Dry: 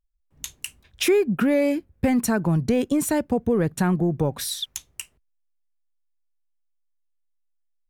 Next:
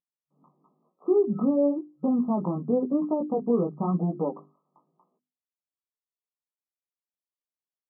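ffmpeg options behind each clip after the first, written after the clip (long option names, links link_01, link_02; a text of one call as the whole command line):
ffmpeg -i in.wav -af "flanger=delay=16:depth=5.6:speed=0.97,bandreject=frequency=50:width_type=h:width=6,bandreject=frequency=100:width_type=h:width=6,bandreject=frequency=150:width_type=h:width=6,bandreject=frequency=200:width_type=h:width=6,bandreject=frequency=250:width_type=h:width=6,bandreject=frequency=300:width_type=h:width=6,bandreject=frequency=350:width_type=h:width=6,bandreject=frequency=400:width_type=h:width=6,afftfilt=real='re*between(b*sr/4096,140,1300)':imag='im*between(b*sr/4096,140,1300)':win_size=4096:overlap=0.75" out.wav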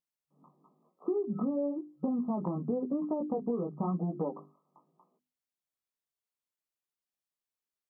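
ffmpeg -i in.wav -af "acompressor=threshold=-29dB:ratio=6" out.wav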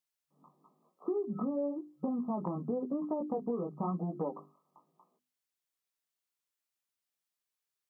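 ffmpeg -i in.wav -af "tiltshelf=frequency=810:gain=-3.5" out.wav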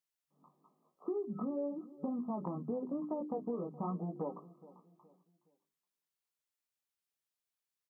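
ffmpeg -i in.wav -filter_complex "[0:a]asplit=2[link_01][link_02];[link_02]adelay=419,lowpass=frequency=1100:poles=1,volume=-18dB,asplit=2[link_03][link_04];[link_04]adelay=419,lowpass=frequency=1100:poles=1,volume=0.38,asplit=2[link_05][link_06];[link_06]adelay=419,lowpass=frequency=1100:poles=1,volume=0.38[link_07];[link_01][link_03][link_05][link_07]amix=inputs=4:normalize=0,volume=-3.5dB" out.wav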